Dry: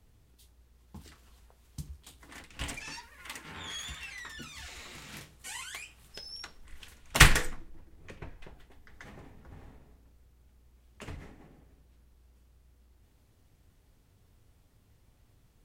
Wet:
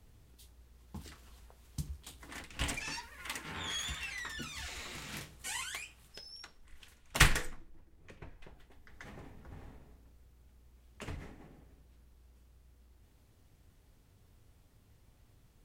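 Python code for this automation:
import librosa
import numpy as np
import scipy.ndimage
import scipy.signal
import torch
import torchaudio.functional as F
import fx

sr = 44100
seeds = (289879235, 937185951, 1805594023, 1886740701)

y = fx.gain(x, sr, db=fx.line((5.6, 2.0), (6.33, -6.5), (8.09, -6.5), (9.23, 0.0)))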